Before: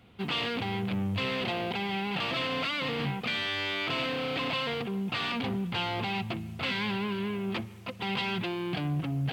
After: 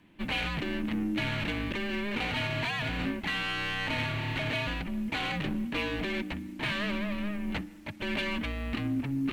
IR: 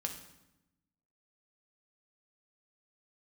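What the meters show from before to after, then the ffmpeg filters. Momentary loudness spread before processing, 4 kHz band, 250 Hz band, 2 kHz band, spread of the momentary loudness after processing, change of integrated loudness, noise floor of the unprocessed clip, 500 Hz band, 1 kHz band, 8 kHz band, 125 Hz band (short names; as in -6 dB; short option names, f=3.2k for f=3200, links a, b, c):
3 LU, -3.0 dB, +1.0 dB, +1.0 dB, 4 LU, -1.0 dB, -44 dBFS, -3.5 dB, -3.5 dB, +2.0 dB, -1.5 dB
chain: -af "aeval=exprs='0.106*(cos(1*acos(clip(val(0)/0.106,-1,1)))-cos(1*PI/2))+0.00335*(cos(7*acos(clip(val(0)/0.106,-1,1)))-cos(7*PI/2))':c=same,afreqshift=-410"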